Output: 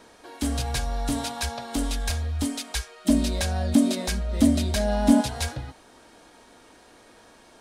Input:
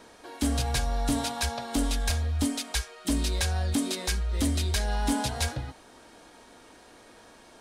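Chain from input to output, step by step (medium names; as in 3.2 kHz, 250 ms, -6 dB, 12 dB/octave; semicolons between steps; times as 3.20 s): 3.05–5.20 s: small resonant body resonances 230/600 Hz, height 13 dB -> 16 dB, ringing for 45 ms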